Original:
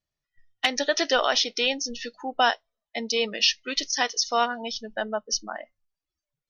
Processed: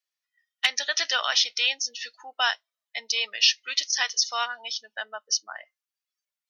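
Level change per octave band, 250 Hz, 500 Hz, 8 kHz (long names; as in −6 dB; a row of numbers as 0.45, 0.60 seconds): below −25 dB, −13.5 dB, +2.0 dB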